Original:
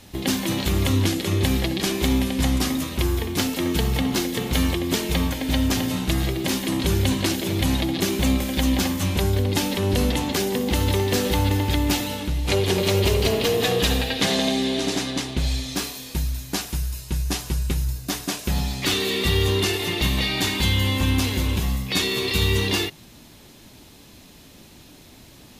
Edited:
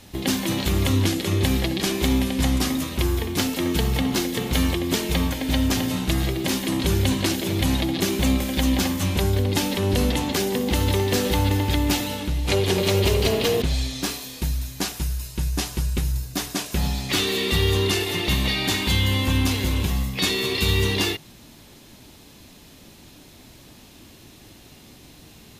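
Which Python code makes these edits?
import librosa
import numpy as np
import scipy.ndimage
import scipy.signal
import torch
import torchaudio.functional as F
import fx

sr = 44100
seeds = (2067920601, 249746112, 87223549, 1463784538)

y = fx.edit(x, sr, fx.cut(start_s=13.62, length_s=1.73), tone=tone)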